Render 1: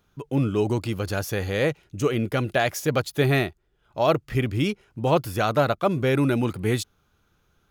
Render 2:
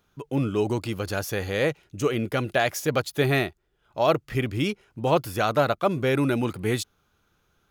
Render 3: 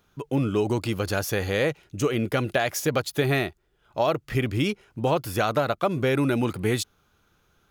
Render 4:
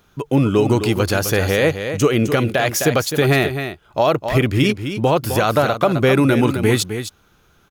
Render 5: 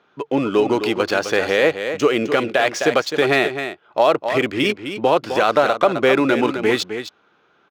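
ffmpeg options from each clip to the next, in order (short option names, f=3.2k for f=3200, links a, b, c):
-af "lowshelf=f=210:g=-4.5"
-af "acompressor=threshold=-22dB:ratio=6,volume=3dB"
-filter_complex "[0:a]asplit=2[a][b];[b]aecho=0:1:259:0.335[c];[a][c]amix=inputs=2:normalize=0,alimiter=level_in=12.5dB:limit=-1dB:release=50:level=0:latency=1,volume=-4dB"
-af "highpass=330,lowpass=4.8k,adynamicsmooth=sensitivity=7:basefreq=3.7k,volume=1.5dB"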